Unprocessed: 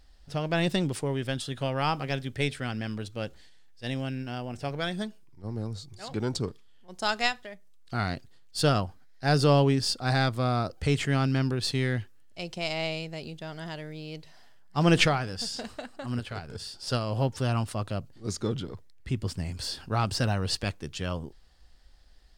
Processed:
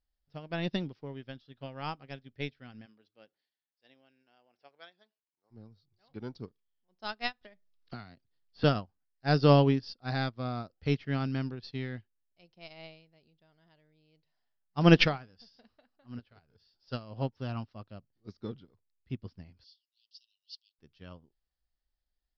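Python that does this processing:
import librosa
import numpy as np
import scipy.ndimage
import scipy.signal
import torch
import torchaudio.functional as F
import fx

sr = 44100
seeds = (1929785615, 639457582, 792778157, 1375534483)

y = fx.highpass(x, sr, hz=fx.line((2.85, 240.0), (5.5, 630.0)), slope=12, at=(2.85, 5.5), fade=0.02)
y = fx.band_squash(y, sr, depth_pct=100, at=(7.41, 8.64))
y = fx.steep_highpass(y, sr, hz=2900.0, slope=96, at=(19.64, 20.79))
y = scipy.signal.sosfilt(scipy.signal.butter(12, 5500.0, 'lowpass', fs=sr, output='sos'), y)
y = fx.dynamic_eq(y, sr, hz=230.0, q=2.0, threshold_db=-41.0, ratio=4.0, max_db=4)
y = fx.upward_expand(y, sr, threshold_db=-37.0, expansion=2.5)
y = y * 10.0 ** (2.5 / 20.0)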